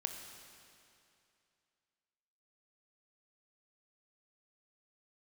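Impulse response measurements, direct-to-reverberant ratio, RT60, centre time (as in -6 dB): 4.0 dB, 2.6 s, 55 ms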